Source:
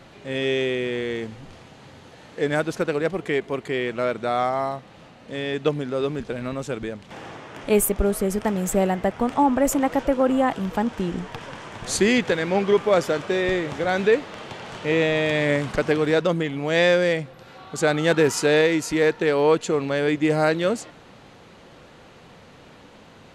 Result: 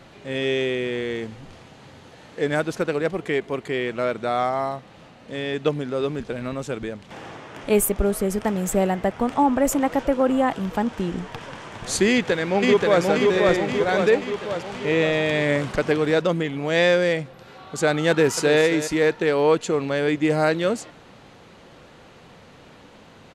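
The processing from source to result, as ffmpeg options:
-filter_complex "[0:a]asplit=2[a][b];[b]afade=t=in:st=12.09:d=0.01,afade=t=out:st=13.03:d=0.01,aecho=0:1:530|1060|1590|2120|2650|3180|3710|4240|4770:0.841395|0.504837|0.302902|0.181741|0.109045|0.0654269|0.0392561|0.0235537|0.0141322[c];[a][c]amix=inputs=2:normalize=0,asplit=2[d][e];[e]afade=t=in:st=18.1:d=0.01,afade=t=out:st=18.6:d=0.01,aecho=0:1:270|540:0.251189|0.0376783[f];[d][f]amix=inputs=2:normalize=0"

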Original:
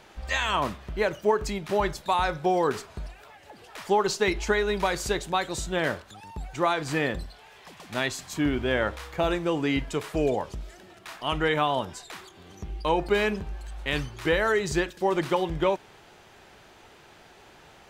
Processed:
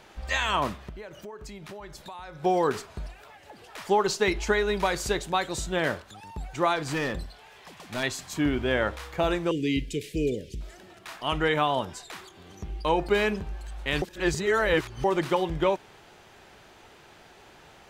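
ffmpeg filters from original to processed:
-filter_complex "[0:a]asettb=1/sr,asplit=3[a][b][c];[a]atrim=end=0.894[d];[b]atrim=start=0.89:end=2.43,asetpts=PTS-STARTPTS,afade=t=in:d=0.004:c=qsin,afade=t=out:st=1.536:d=0.004:c=qsin,acompressor=threshold=-39dB:ratio=6:attack=3.2:release=140:knee=1:detection=peak[e];[c]atrim=start=2.426[f];[d][e]acrossfade=d=0.004:c1=hsin:c2=qsin[g];[g][f]acrossfade=d=0.004:c1=qsin:c2=hsin,asettb=1/sr,asplit=3[h][i][j];[h]atrim=end=6.764[k];[i]atrim=start=6.76:end=8.03,asetpts=PTS-STARTPTS,afade=t=in:d=0.004:c=qsin,afade=t=out:st=1.266:d=0.004:c=qsin,volume=24.5dB,asoftclip=hard,volume=-24.5dB[l];[j]atrim=start=8.026[m];[k][l]acrossfade=d=0.004:c1=hsin:c2=qsin[n];[n][m]acrossfade=d=0.004:c1=qsin:c2=hsin,asettb=1/sr,asplit=3[o][p][q];[o]atrim=end=9.514[r];[p]atrim=start=9.51:end=10.61,asetpts=PTS-STARTPTS,afade=t=in:d=0.004:c=qsin,afade=t=out:st=1.096:d=0.004:c=qsin,asuperstop=centerf=1000:order=8:qfactor=0.58[s];[q]atrim=start=10.606[t];[r][s]acrossfade=d=0.004:c1=hsin:c2=qsin[u];[u][t]acrossfade=d=0.004:c1=qsin:c2=hsin,asplit=3[v][w][x];[v]atrim=end=14.022[y];[w]atrim=start=14.018:end=15.042,asetpts=PTS-STARTPTS,areverse[z];[x]atrim=start=15.038[aa];[y][z]acrossfade=d=0.004:c1=hsin:c2=hsin[ab];[ab][aa]acrossfade=d=0.004:c1=hsin:c2=hsin"

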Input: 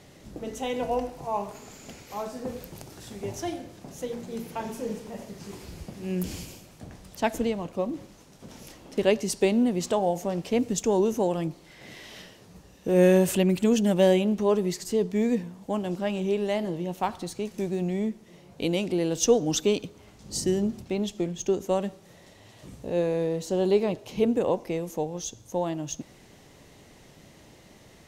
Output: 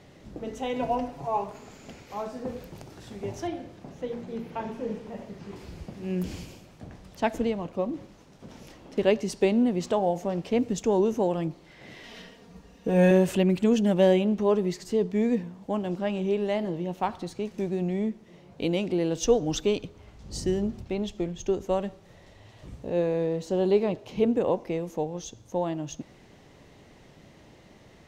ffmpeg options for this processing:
-filter_complex "[0:a]asettb=1/sr,asplit=3[a][b][c];[a]atrim=end=0.754[d];[b]atrim=start=0.75:end=1.44,asetpts=PTS-STARTPTS,afade=t=in:d=0.004:c=qsin,afade=t=out:st=0.686:d=0.004:c=qsin,aecho=1:1:7.2:0.65,atrim=end_sample=30429[e];[c]atrim=start=1.436[f];[d][e]acrossfade=d=0.004:c1=hsin:c2=qsin[g];[g][f]acrossfade=d=0.004:c1=qsin:c2=hsin,asettb=1/sr,asplit=3[h][i][j];[h]atrim=end=3.474[k];[i]atrim=start=3.47:end=5.56,asetpts=PTS-STARTPTS,afade=t=in:d=0.004:c=qsin,afade=t=out:st=2.086:d=0.004:c=qsin,acrossover=split=4000[l][m];[m]acompressor=threshold=-58dB:ratio=4:attack=1:release=60[n];[l][n]amix=inputs=2:normalize=0[o];[j]atrim=start=5.556[p];[k][o]acrossfade=d=0.004:c1=hsin:c2=qsin[q];[q][p]acrossfade=d=0.004:c1=qsin:c2=hsin,asettb=1/sr,asplit=3[r][s][t];[r]atrim=end=12.034[u];[s]atrim=start=12.03:end=13.11,asetpts=PTS-STARTPTS,afade=t=in:d=0.004:c=qsin,afade=t=out:st=1.076:d=0.004:c=qsin,aecho=1:1:4.3:0.65,atrim=end_sample=47628[v];[t]atrim=start=13.106[w];[u][v]acrossfade=d=0.004:c1=hsin:c2=qsin[x];[x][w]acrossfade=d=0.004:c1=qsin:c2=hsin,asplit=3[y][z][aa];[y]afade=t=out:st=19.23:d=0.02[ab];[z]asubboost=boost=3:cutoff=95,afade=t=in:st=19.23:d=0.02,afade=t=out:st=22.75:d=0.02[ac];[aa]afade=t=in:st=22.75:d=0.02[ad];[ab][ac][ad]amix=inputs=3:normalize=0,equalizer=f=12k:w=0.44:g=-12"

